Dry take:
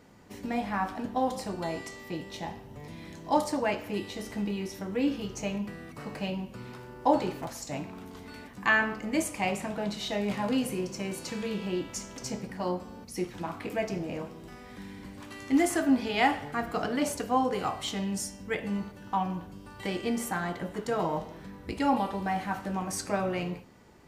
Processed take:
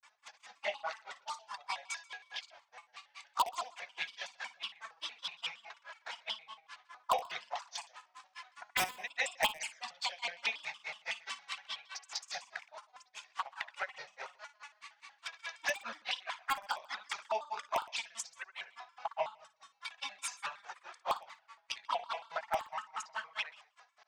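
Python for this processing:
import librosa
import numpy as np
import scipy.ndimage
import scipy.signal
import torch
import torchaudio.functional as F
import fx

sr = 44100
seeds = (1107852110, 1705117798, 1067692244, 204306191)

p1 = fx.granulator(x, sr, seeds[0], grain_ms=118.0, per_s=4.8, spray_ms=100.0, spread_st=0)
p2 = fx.dynamic_eq(p1, sr, hz=3800.0, q=0.9, threshold_db=-56.0, ratio=4.0, max_db=4)
p3 = scipy.signal.sosfilt(scipy.signal.ellip(3, 1.0, 40, [860.0, 7100.0], 'bandpass', fs=sr, output='sos'), p2)
p4 = (np.mod(10.0 ** (24.0 / 20.0) * p3 + 1.0, 2.0) - 1.0) / 10.0 ** (24.0 / 20.0)
p5 = p3 + (p4 * librosa.db_to_amplitude(-6.0))
p6 = fx.env_flanger(p5, sr, rest_ms=4.3, full_db=-33.5)
p7 = fx.echo_feedback(p6, sr, ms=63, feedback_pct=37, wet_db=-14.0)
p8 = fx.vibrato_shape(p7, sr, shape='square', rate_hz=5.4, depth_cents=250.0)
y = p8 * librosa.db_to_amplitude(5.0)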